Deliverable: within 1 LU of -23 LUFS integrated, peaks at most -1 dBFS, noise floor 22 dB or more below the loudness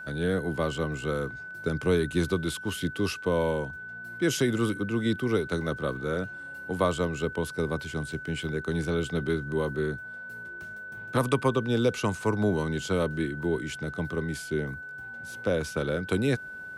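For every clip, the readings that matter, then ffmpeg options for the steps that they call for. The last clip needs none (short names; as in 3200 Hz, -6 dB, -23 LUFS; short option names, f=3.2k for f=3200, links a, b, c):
steady tone 1500 Hz; tone level -38 dBFS; loudness -29.0 LUFS; peak -12.0 dBFS; loudness target -23.0 LUFS
-> -af "bandreject=f=1.5k:w=30"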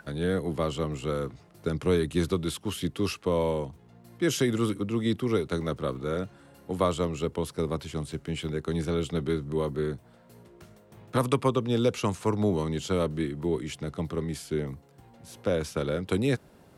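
steady tone none; loudness -29.5 LUFS; peak -12.0 dBFS; loudness target -23.0 LUFS
-> -af "volume=6.5dB"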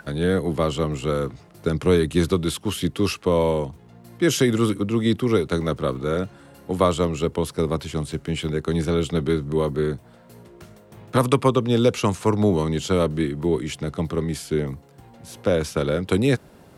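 loudness -23.0 LUFS; peak -5.5 dBFS; noise floor -50 dBFS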